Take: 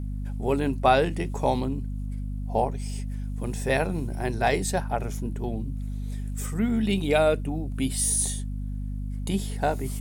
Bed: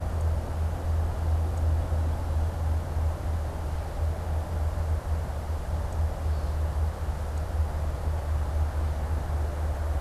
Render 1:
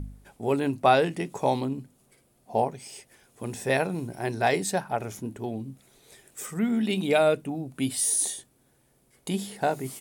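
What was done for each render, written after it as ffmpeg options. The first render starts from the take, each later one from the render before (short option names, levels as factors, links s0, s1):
-af "bandreject=f=50:t=h:w=4,bandreject=f=100:t=h:w=4,bandreject=f=150:t=h:w=4,bandreject=f=200:t=h:w=4,bandreject=f=250:t=h:w=4"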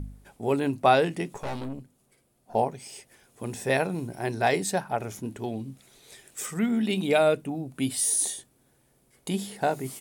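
-filter_complex "[0:a]asettb=1/sr,asplit=3[s0][s1][s2];[s0]atrim=end=1.344[s3];[s1]atrim=start=1.34:end=2.55,asetpts=PTS-STARTPTS,afade=t=in:d=0.004:c=qsin,afade=t=out:st=1.206:d=0.004:c=qsin,aeval=exprs='(tanh(31.6*val(0)+0.7)-tanh(0.7))/31.6':c=same[s4];[s2]atrim=start=2.546[s5];[s3][s4]acrossfade=d=0.004:c1=hsin:c2=qsin[s6];[s6][s5]acrossfade=d=0.004:c1=qsin:c2=hsin,asettb=1/sr,asplit=3[s7][s8][s9];[s7]atrim=end=5.234[s10];[s8]atrim=start=5.23:end=6.66,asetpts=PTS-STARTPTS,afade=t=in:d=0.004:c=qsin,afade=t=out:st=1.426:d=0.004:c=qsin,equalizer=f=4000:w=0.41:g=5[s11];[s9]atrim=start=6.656[s12];[s10][s11]acrossfade=d=0.004:c1=hsin:c2=qsin[s13];[s13][s12]acrossfade=d=0.004:c1=qsin:c2=hsin"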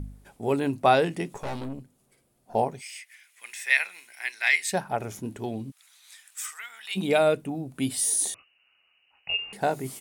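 -filter_complex "[0:a]asplit=3[s0][s1][s2];[s0]afade=t=out:st=2.8:d=0.02[s3];[s1]highpass=f=2100:t=q:w=4.6,afade=t=in:st=2.8:d=0.02,afade=t=out:st=4.72:d=0.02[s4];[s2]afade=t=in:st=4.72:d=0.02[s5];[s3][s4][s5]amix=inputs=3:normalize=0,asplit=3[s6][s7][s8];[s6]afade=t=out:st=5.7:d=0.02[s9];[s7]highpass=f=1100:w=0.5412,highpass=f=1100:w=1.3066,afade=t=in:st=5.7:d=0.02,afade=t=out:st=6.95:d=0.02[s10];[s8]afade=t=in:st=6.95:d=0.02[s11];[s9][s10][s11]amix=inputs=3:normalize=0,asettb=1/sr,asplit=3[s12][s13][s14];[s12]atrim=end=8.344[s15];[s13]atrim=start=8.34:end=9.53,asetpts=PTS-STARTPTS,afade=t=in:d=0.004:c=qsin,afade=t=out:st=1.186:d=0.004:c=qsin,lowpass=f=2600:t=q:w=0.5098,lowpass=f=2600:t=q:w=0.6013,lowpass=f=2600:t=q:w=0.9,lowpass=f=2600:t=q:w=2.563,afreqshift=-3000[s16];[s14]atrim=start=9.526[s17];[s15][s16]acrossfade=d=0.004:c1=hsin:c2=qsin[s18];[s18][s17]acrossfade=d=0.004:c1=qsin:c2=hsin"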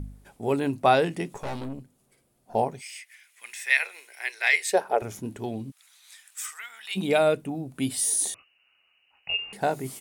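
-filter_complex "[0:a]asettb=1/sr,asplit=3[s0][s1][s2];[s0]atrim=end=3.824[s3];[s1]atrim=start=3.82:end=5.02,asetpts=PTS-STARTPTS,afade=t=in:d=0.004:c=qsin,afade=t=out:st=1.196:d=0.004:c=qsin,highpass=f=440:t=q:w=3.6[s4];[s2]atrim=start=5.016[s5];[s3][s4]acrossfade=d=0.004:c1=hsin:c2=qsin[s6];[s6][s5]acrossfade=d=0.004:c1=qsin:c2=hsin"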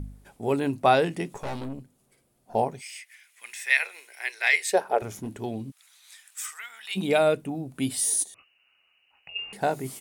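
-filter_complex "[0:a]asettb=1/sr,asplit=3[s0][s1][s2];[s0]atrim=end=4.984[s3];[s1]atrim=start=4.98:end=5.4,asetpts=PTS-STARTPTS,afade=t=in:d=0.004:c=qsin,afade=t=out:st=0.416:d=0.004:c=qsin,volume=25.1,asoftclip=hard,volume=0.0398[s4];[s2]atrim=start=5.396[s5];[s3][s4]acrossfade=d=0.004:c1=hsin:c2=qsin[s6];[s6][s5]acrossfade=d=0.004:c1=qsin:c2=hsin,asplit=3[s7][s8][s9];[s7]afade=t=out:st=8.22:d=0.02[s10];[s8]acompressor=threshold=0.00891:ratio=16:attack=3.2:release=140:knee=1:detection=peak,afade=t=in:st=8.22:d=0.02,afade=t=out:st=9.35:d=0.02[s11];[s9]afade=t=in:st=9.35:d=0.02[s12];[s10][s11][s12]amix=inputs=3:normalize=0"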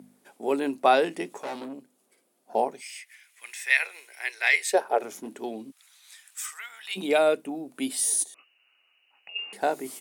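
-af "highpass=f=250:w=0.5412,highpass=f=250:w=1.3066"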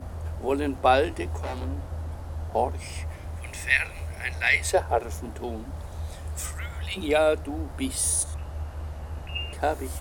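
-filter_complex "[1:a]volume=0.447[s0];[0:a][s0]amix=inputs=2:normalize=0"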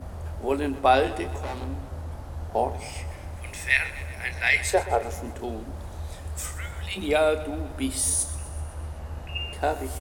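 -filter_complex "[0:a]asplit=2[s0][s1];[s1]adelay=30,volume=0.282[s2];[s0][s2]amix=inputs=2:normalize=0,aecho=1:1:126|252|378|504|630|756:0.158|0.0935|0.0552|0.0326|0.0192|0.0113"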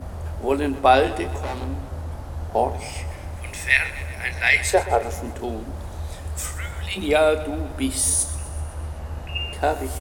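-af "volume=1.58"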